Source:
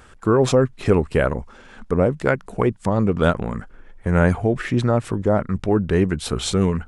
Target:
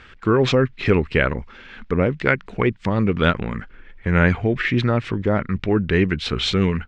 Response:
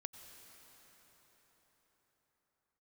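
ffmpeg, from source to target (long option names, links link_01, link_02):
-af "firequalizer=gain_entry='entry(360,0);entry(670,-5);entry(2100,10);entry(3900,5);entry(10000,-24)':delay=0.05:min_phase=1"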